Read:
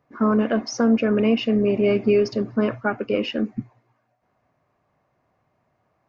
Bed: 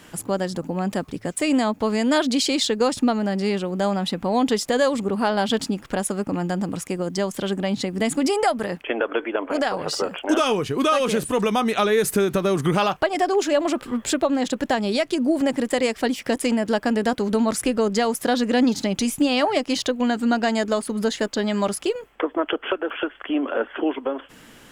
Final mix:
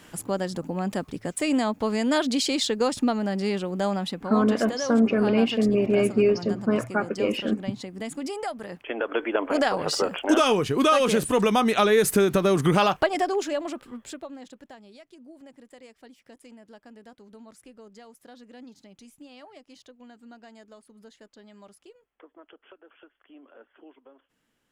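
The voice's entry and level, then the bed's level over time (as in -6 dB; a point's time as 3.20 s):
4.10 s, -2.0 dB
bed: 3.96 s -3.5 dB
4.43 s -11.5 dB
8.62 s -11.5 dB
9.31 s 0 dB
12.97 s 0 dB
14.91 s -27.5 dB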